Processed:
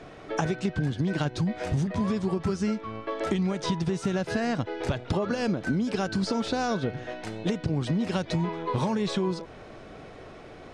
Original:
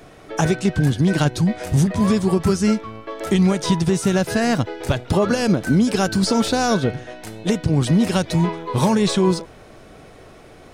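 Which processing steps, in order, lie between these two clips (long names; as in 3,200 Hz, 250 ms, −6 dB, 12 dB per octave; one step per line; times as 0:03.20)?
low-shelf EQ 120 Hz −4 dB
downward compressor, threshold −24 dBFS, peak gain reduction 10.5 dB
high-frequency loss of the air 95 metres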